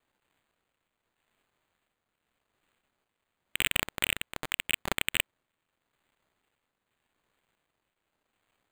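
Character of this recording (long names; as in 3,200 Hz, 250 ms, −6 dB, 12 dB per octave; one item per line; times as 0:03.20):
a quantiser's noise floor 12 bits, dither none
tremolo triangle 0.85 Hz, depth 55%
phaser sweep stages 4, 2.1 Hz, lowest notch 800–2,900 Hz
aliases and images of a low sample rate 5,500 Hz, jitter 0%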